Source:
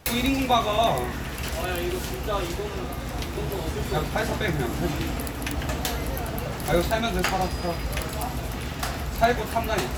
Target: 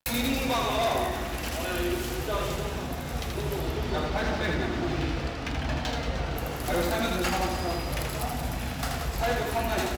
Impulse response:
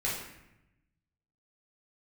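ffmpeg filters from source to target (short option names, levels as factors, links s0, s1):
-filter_complex "[0:a]asettb=1/sr,asplit=3[s0][s1][s2];[s0]atrim=end=3.594[s3];[s1]atrim=start=3.59:end=6.36,asetpts=PTS-STARTPTS,afade=t=in:d=0.004:c=qsin,afade=t=out:st=2.766:d=0.004:c=qsin,lowpass=f=5400:w=0.5412,lowpass=f=5400:w=1.3066[s4];[s2]atrim=start=6.356[s5];[s3][s4]acrossfade=d=0.004:c1=hsin:c2=qsin[s6];[s6][s5]acrossfade=d=0.004:c1=qsin:c2=hsin,aeval=exprs='sgn(val(0))*max(abs(val(0))-0.00596,0)':c=same,flanger=delay=1.2:depth=2.5:regen=-55:speed=0.35:shape=sinusoidal,volume=20,asoftclip=hard,volume=0.0501,aecho=1:1:80|180|305|461.2|656.6:0.631|0.398|0.251|0.158|0.1,volume=1.26"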